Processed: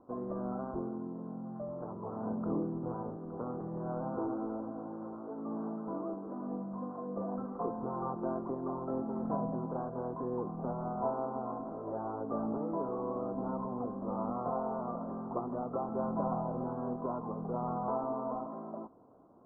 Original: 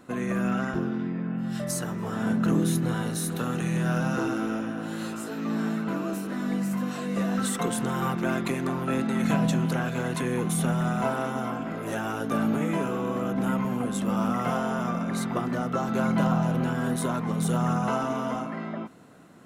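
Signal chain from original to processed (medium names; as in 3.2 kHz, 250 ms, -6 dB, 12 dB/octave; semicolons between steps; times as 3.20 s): steep low-pass 1.1 kHz 48 dB/octave; peaking EQ 160 Hz -12 dB 1.2 oct; trim -4 dB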